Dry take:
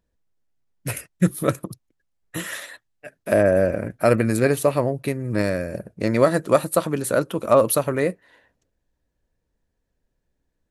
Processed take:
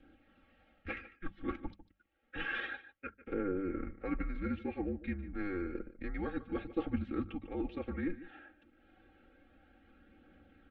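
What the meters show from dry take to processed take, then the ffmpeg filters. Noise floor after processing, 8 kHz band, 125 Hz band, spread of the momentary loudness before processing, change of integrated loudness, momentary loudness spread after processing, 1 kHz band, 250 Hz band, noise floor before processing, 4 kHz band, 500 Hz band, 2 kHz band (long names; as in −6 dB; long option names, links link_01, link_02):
−73 dBFS, below −40 dB, −20.0 dB, 15 LU, −18.0 dB, 12 LU, −19.5 dB, −12.5 dB, −76 dBFS, −16.0 dB, −22.5 dB, −12.5 dB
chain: -af "areverse,acompressor=threshold=-33dB:ratio=6,areverse,highpass=frequency=230:width_type=q:width=0.5412,highpass=frequency=230:width_type=q:width=1.307,lowpass=frequency=3200:width_type=q:width=0.5176,lowpass=frequency=3200:width_type=q:width=0.7071,lowpass=frequency=3200:width_type=q:width=1.932,afreqshift=-190,asuperstop=centerf=1000:order=12:qfactor=4.7,aecho=1:1:3.7:0.89,acompressor=mode=upward:threshold=-45dB:ratio=2.5,bandreject=frequency=50:width_type=h:width=6,bandreject=frequency=100:width_type=h:width=6,bandreject=frequency=150:width_type=h:width=6,bandreject=frequency=200:width_type=h:width=6,adynamicequalizer=threshold=0.00282:dfrequency=930:dqfactor=0.85:tfrequency=930:tqfactor=0.85:attack=5:release=100:ratio=0.375:range=3:mode=cutabove:tftype=bell,aecho=1:1:148:0.158,aphaser=in_gain=1:out_gain=1:delay=3.4:decay=0.26:speed=0.29:type=triangular,volume=-1.5dB"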